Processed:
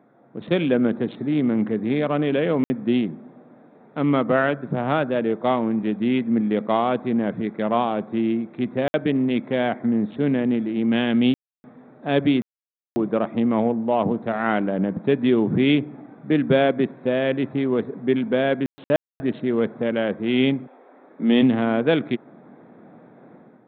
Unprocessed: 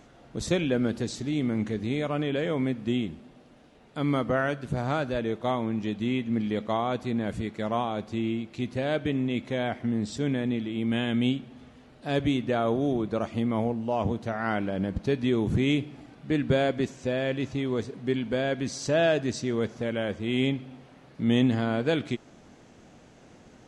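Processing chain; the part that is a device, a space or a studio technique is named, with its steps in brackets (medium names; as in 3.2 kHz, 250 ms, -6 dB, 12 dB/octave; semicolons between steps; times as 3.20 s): local Wiener filter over 15 samples; call with lost packets (high-pass 150 Hz 24 dB/octave; resampled via 8 kHz; level rider gain up to 9 dB; lost packets of 60 ms bursts); 20.66–21.41 s: high-pass 480 Hz -> 160 Hz 24 dB/octave; trim -1.5 dB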